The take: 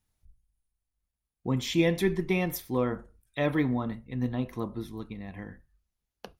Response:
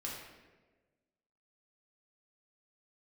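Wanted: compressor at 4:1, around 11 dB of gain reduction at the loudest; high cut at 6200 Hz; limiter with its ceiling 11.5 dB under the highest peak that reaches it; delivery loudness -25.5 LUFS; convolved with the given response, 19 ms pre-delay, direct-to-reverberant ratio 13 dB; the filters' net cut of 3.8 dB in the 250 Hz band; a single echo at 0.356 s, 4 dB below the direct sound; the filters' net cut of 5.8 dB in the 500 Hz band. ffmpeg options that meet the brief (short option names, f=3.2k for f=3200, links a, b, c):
-filter_complex "[0:a]lowpass=6.2k,equalizer=f=250:t=o:g=-3,equalizer=f=500:t=o:g=-6.5,acompressor=threshold=-37dB:ratio=4,alimiter=level_in=11.5dB:limit=-24dB:level=0:latency=1,volume=-11.5dB,aecho=1:1:356:0.631,asplit=2[a][b];[1:a]atrim=start_sample=2205,adelay=19[c];[b][c]afir=irnorm=-1:irlink=0,volume=-13.5dB[d];[a][d]amix=inputs=2:normalize=0,volume=19dB"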